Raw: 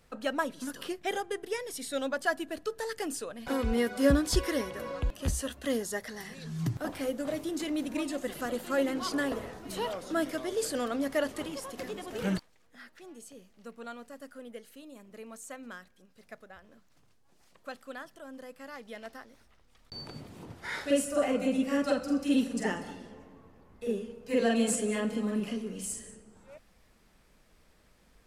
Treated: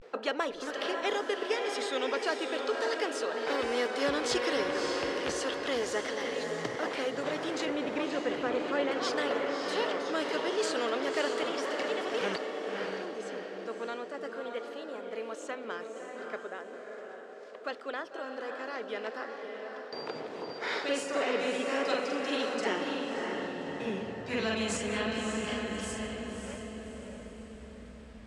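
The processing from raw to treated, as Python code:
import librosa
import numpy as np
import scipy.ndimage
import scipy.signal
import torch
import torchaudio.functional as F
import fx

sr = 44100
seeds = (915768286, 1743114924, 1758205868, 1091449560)

y = fx.riaa(x, sr, side='playback', at=(7.65, 8.91))
y = fx.filter_sweep_highpass(y, sr, from_hz=430.0, to_hz=65.0, start_s=22.4, end_s=25.03, q=5.5)
y = fx.vibrato(y, sr, rate_hz=0.36, depth_cents=65.0)
y = fx.air_absorb(y, sr, metres=140.0)
y = fx.echo_diffused(y, sr, ms=592, feedback_pct=42, wet_db=-7)
y = fx.spectral_comp(y, sr, ratio=2.0)
y = y * 10.0 ** (-7.0 / 20.0)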